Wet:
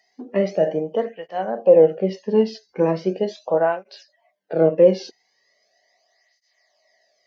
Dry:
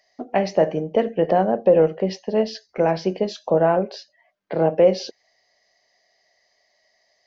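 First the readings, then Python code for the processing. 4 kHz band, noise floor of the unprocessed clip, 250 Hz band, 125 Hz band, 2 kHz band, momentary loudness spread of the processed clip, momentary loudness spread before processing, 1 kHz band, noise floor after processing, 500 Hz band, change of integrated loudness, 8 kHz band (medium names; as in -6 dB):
-4.5 dB, -67 dBFS, 0.0 dB, -1.5 dB, -2.0 dB, 13 LU, 11 LU, -4.0 dB, -69 dBFS, +1.0 dB, +1.0 dB, no reading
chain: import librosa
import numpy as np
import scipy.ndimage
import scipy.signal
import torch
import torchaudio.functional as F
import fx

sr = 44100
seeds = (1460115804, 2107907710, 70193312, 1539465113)

y = fx.hpss(x, sr, part='percussive', gain_db=-11)
y = fx.flanger_cancel(y, sr, hz=0.39, depth_ms=1.8)
y = F.gain(torch.from_numpy(y), 5.5).numpy()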